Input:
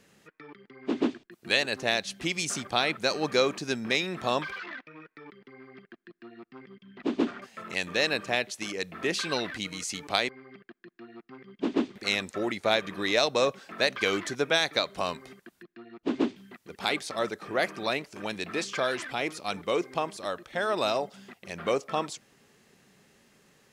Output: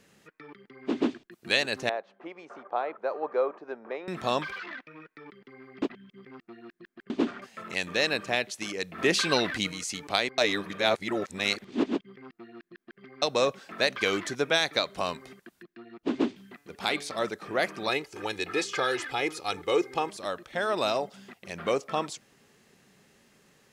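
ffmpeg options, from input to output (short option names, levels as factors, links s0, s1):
-filter_complex "[0:a]asettb=1/sr,asplit=3[s0][s1][s2];[s0]atrim=end=1.894[s3];[s1]atrim=start=1.89:end=4.08,asetpts=PTS-STARTPTS,afade=t=in:d=0.004:c=qsin,afade=t=out:st=2.186:d=0.004:c=qsin,asuperpass=centerf=720:order=4:qfactor=0.95[s4];[s2]atrim=start=4.076[s5];[s3][s4]acrossfade=d=0.004:c1=hsin:c2=qsin[s6];[s6][s5]acrossfade=d=0.004:c1=qsin:c2=hsin,asettb=1/sr,asplit=3[s7][s8][s9];[s7]atrim=end=8.984[s10];[s8]atrim=start=8.98:end=9.72,asetpts=PTS-STARTPTS,afade=t=in:d=0.004:c=qsin,afade=t=out:st=0.736:d=0.004:c=qsin,acontrast=23[s11];[s9]atrim=start=9.716[s12];[s10][s11]acrossfade=d=0.004:c1=hsin:c2=qsin[s13];[s13][s12]acrossfade=d=0.004:c1=qsin:c2=hsin,asplit=3[s14][s15][s16];[s14]afade=t=out:st=16.56:d=0.02[s17];[s15]bandreject=f=143.6:t=h:w=4,bandreject=f=287.2:t=h:w=4,bandreject=f=430.8:t=h:w=4,bandreject=f=574.4:t=h:w=4,bandreject=f=718:t=h:w=4,bandreject=f=861.6:t=h:w=4,bandreject=f=1005.2:t=h:w=4,bandreject=f=1148.8:t=h:w=4,bandreject=f=1292.4:t=h:w=4,bandreject=f=1436:t=h:w=4,bandreject=f=1579.6:t=h:w=4,bandreject=f=1723.2:t=h:w=4,bandreject=f=1866.8:t=h:w=4,bandreject=f=2010.4:t=h:w=4,bandreject=f=2154:t=h:w=4,bandreject=f=2297.6:t=h:w=4,bandreject=f=2441.2:t=h:w=4,bandreject=f=2584.8:t=h:w=4,bandreject=f=2728.4:t=h:w=4,bandreject=f=2872:t=h:w=4,bandreject=f=3015.6:t=h:w=4,bandreject=f=3159.2:t=h:w=4,bandreject=f=3302.8:t=h:w=4,bandreject=f=3446.4:t=h:w=4,bandreject=f=3590:t=h:w=4,bandreject=f=3733.6:t=h:w=4,bandreject=f=3877.2:t=h:w=4,bandreject=f=4020.8:t=h:w=4,bandreject=f=4164.4:t=h:w=4,bandreject=f=4308:t=h:w=4,bandreject=f=4451.6:t=h:w=4,bandreject=f=4595.2:t=h:w=4,bandreject=f=4738.8:t=h:w=4,afade=t=in:st=16.56:d=0.02,afade=t=out:st=17.2:d=0.02[s18];[s16]afade=t=in:st=17.2:d=0.02[s19];[s17][s18][s19]amix=inputs=3:normalize=0,asettb=1/sr,asplit=3[s20][s21][s22];[s20]atrim=end=17.884[s23];[s21]atrim=start=17.88:end=20.1,asetpts=PTS-STARTPTS,afade=t=in:d=0.004:c=qsin,afade=t=out:st=2.216:d=0.004:c=qsin,aecho=1:1:2.4:0.65,atrim=end_sample=97902[s24];[s22]atrim=start=20.096[s25];[s23][s24]acrossfade=d=0.004:c1=hsin:c2=qsin[s26];[s26][s25]acrossfade=d=0.004:c1=qsin:c2=hsin,asplit=5[s27][s28][s29][s30][s31];[s27]atrim=end=5.822[s32];[s28]atrim=start=5.818:end=7.102,asetpts=PTS-STARTPTS,areverse[s33];[s29]atrim=start=7.098:end=10.382[s34];[s30]atrim=start=10.378:end=13.222,asetpts=PTS-STARTPTS,areverse[s35];[s31]atrim=start=13.218[s36];[s32][s33]acrossfade=d=0.004:c1=hsin:c2=hsin[s37];[s37][s34]acrossfade=d=0.004:c1=hsin:c2=hsin[s38];[s38][s35]acrossfade=d=0.004:c1=hsin:c2=hsin[s39];[s39][s36]acrossfade=d=0.004:c1=hsin:c2=hsin"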